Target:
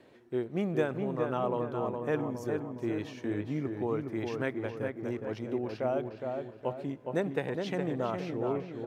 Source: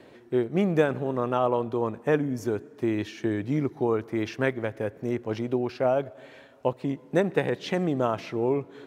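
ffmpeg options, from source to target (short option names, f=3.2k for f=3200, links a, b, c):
-filter_complex "[0:a]asplit=2[a][b];[b]adelay=414,lowpass=f=2.1k:p=1,volume=-4.5dB,asplit=2[c][d];[d]adelay=414,lowpass=f=2.1k:p=1,volume=0.49,asplit=2[e][f];[f]adelay=414,lowpass=f=2.1k:p=1,volume=0.49,asplit=2[g][h];[h]adelay=414,lowpass=f=2.1k:p=1,volume=0.49,asplit=2[i][j];[j]adelay=414,lowpass=f=2.1k:p=1,volume=0.49,asplit=2[k][l];[l]adelay=414,lowpass=f=2.1k:p=1,volume=0.49[m];[a][c][e][g][i][k][m]amix=inputs=7:normalize=0,volume=-7.5dB"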